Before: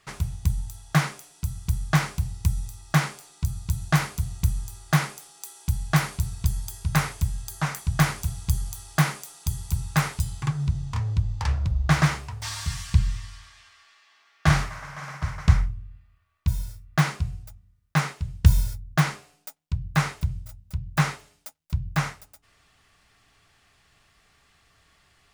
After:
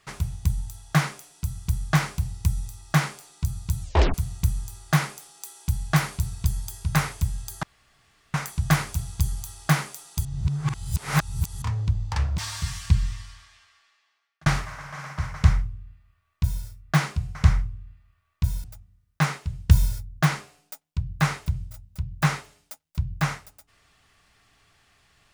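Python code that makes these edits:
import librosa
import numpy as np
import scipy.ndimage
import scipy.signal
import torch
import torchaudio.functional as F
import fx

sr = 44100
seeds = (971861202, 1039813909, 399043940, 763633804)

y = fx.edit(x, sr, fx.tape_stop(start_s=3.82, length_s=0.32),
    fx.insert_room_tone(at_s=7.63, length_s=0.71),
    fx.reverse_span(start_s=9.54, length_s=1.37),
    fx.cut(start_s=11.67, length_s=0.75),
    fx.fade_out_span(start_s=13.21, length_s=1.29),
    fx.duplicate(start_s=15.39, length_s=1.29, to_s=17.39), tone=tone)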